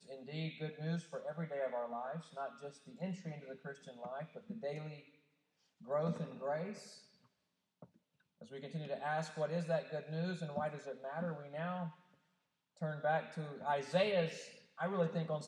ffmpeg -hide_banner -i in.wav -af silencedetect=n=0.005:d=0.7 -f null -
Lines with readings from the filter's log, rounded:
silence_start: 4.96
silence_end: 5.88 | silence_duration: 0.92
silence_start: 6.93
silence_end: 7.82 | silence_duration: 0.90
silence_start: 11.90
silence_end: 12.81 | silence_duration: 0.92